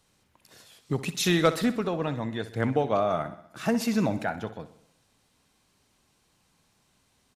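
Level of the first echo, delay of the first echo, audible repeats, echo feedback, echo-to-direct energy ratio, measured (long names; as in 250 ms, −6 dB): −14.5 dB, 63 ms, 5, 57%, −13.0 dB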